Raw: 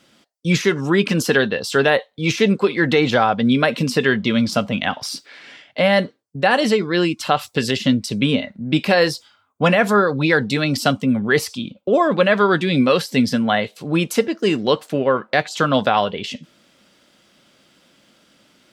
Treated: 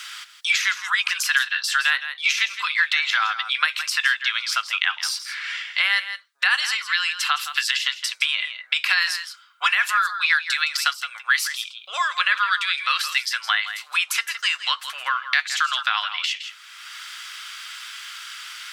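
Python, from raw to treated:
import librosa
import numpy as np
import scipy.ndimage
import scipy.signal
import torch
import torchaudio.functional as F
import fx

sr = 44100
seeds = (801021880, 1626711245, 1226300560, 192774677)

y = scipy.signal.sosfilt(scipy.signal.butter(6, 1200.0, 'highpass', fs=sr, output='sos'), x)
y = y + 10.0 ** (-13.0 / 20.0) * np.pad(y, (int(164 * sr / 1000.0), 0))[:len(y)]
y = fx.band_squash(y, sr, depth_pct=70)
y = y * 10.0 ** (2.0 / 20.0)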